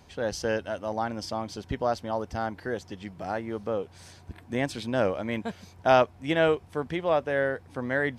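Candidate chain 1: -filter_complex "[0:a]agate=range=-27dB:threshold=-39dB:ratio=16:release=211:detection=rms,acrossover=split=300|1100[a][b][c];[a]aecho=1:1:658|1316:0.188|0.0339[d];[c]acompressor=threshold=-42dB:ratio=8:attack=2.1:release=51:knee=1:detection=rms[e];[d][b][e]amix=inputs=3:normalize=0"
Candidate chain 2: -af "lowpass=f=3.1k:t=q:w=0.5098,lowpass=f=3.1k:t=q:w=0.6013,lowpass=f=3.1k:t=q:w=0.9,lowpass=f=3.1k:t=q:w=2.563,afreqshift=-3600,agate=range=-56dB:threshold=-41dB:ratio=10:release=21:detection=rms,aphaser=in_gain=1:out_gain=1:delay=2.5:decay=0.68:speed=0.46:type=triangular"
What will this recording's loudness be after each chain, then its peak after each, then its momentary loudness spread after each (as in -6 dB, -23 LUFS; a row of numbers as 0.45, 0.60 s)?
-30.0, -23.0 LUFS; -10.0, -3.5 dBFS; 10, 11 LU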